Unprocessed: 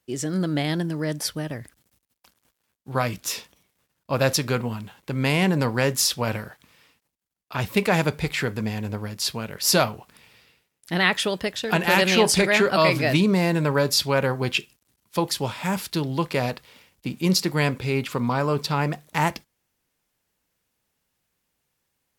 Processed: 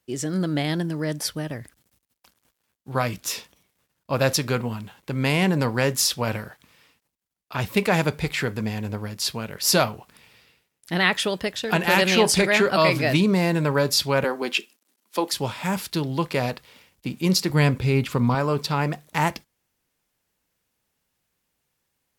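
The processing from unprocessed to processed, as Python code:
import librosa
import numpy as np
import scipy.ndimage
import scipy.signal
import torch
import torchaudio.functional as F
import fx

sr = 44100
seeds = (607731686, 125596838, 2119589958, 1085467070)

y = fx.steep_highpass(x, sr, hz=220.0, slope=36, at=(14.24, 15.33))
y = fx.low_shelf(y, sr, hz=170.0, db=10.0, at=(17.5, 18.35))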